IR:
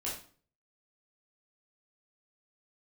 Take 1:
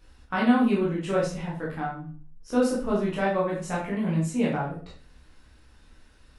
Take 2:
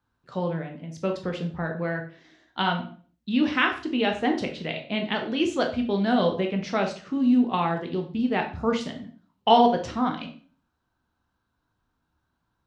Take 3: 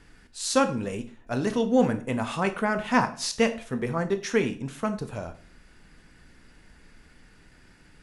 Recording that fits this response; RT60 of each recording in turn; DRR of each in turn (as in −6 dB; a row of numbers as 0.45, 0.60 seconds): 1; 0.45, 0.45, 0.45 seconds; −6.5, 3.0, 8.5 decibels